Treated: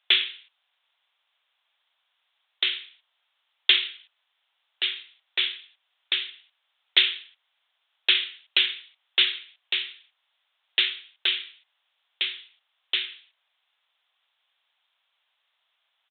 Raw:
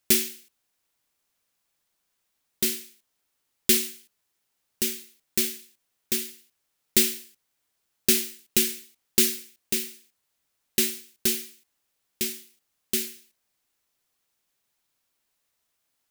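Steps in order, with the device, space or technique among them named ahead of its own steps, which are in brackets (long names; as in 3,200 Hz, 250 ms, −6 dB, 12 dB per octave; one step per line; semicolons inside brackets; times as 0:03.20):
musical greeting card (downsampling to 8,000 Hz; high-pass filter 680 Hz 24 dB per octave; parametric band 3,400 Hz +8 dB 0.58 octaves)
level +6.5 dB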